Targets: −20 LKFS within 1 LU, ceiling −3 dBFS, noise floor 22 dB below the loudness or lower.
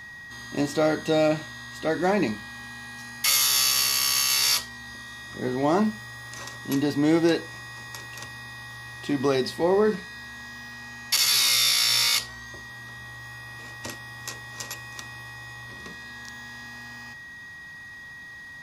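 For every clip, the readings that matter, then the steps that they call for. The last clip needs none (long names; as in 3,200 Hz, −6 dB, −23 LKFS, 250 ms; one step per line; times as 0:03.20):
crackle rate 20 per second; interfering tone 1,900 Hz; level of the tone −40 dBFS; integrated loudness −22.5 LKFS; sample peak −9.0 dBFS; target loudness −20.0 LKFS
→ click removal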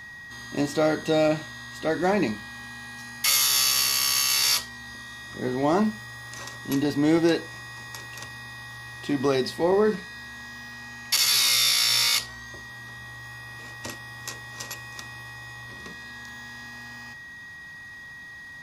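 crackle rate 0.054 per second; interfering tone 1,900 Hz; level of the tone −40 dBFS
→ notch filter 1,900 Hz, Q 30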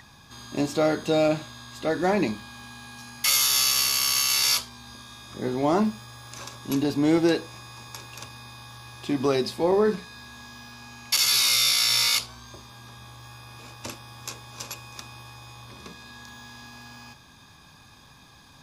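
interfering tone none found; integrated loudness −22.5 LKFS; sample peak −9.0 dBFS; target loudness −20.0 LKFS
→ level +2.5 dB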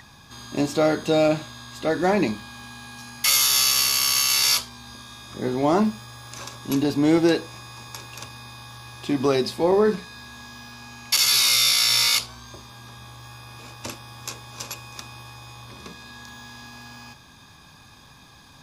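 integrated loudness −20.0 LKFS; sample peak −6.5 dBFS; background noise floor −50 dBFS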